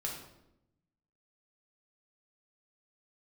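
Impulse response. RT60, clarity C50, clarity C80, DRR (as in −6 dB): 0.85 s, 4.0 dB, 7.0 dB, −2.0 dB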